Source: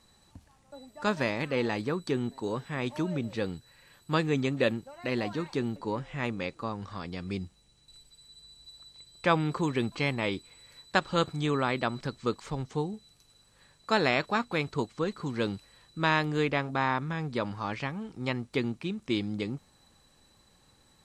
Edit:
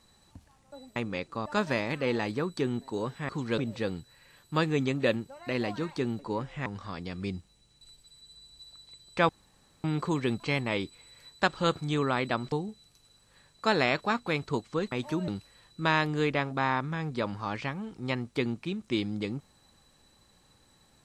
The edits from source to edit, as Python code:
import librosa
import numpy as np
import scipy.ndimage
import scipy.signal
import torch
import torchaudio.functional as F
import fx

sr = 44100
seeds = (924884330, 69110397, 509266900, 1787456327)

y = fx.edit(x, sr, fx.swap(start_s=2.79, length_s=0.36, other_s=15.17, other_length_s=0.29),
    fx.move(start_s=6.23, length_s=0.5, to_s=0.96),
    fx.insert_room_tone(at_s=9.36, length_s=0.55),
    fx.cut(start_s=12.04, length_s=0.73), tone=tone)